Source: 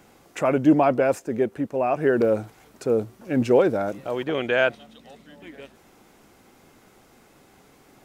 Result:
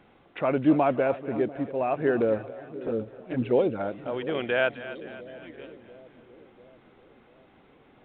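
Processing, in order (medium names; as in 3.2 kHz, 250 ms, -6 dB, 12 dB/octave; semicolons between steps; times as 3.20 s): 2.38–3.80 s: touch-sensitive flanger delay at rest 10.6 ms, full sweep at -14.5 dBFS; two-band feedback delay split 540 Hz, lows 694 ms, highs 261 ms, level -14 dB; trim -4 dB; µ-law 64 kbps 8 kHz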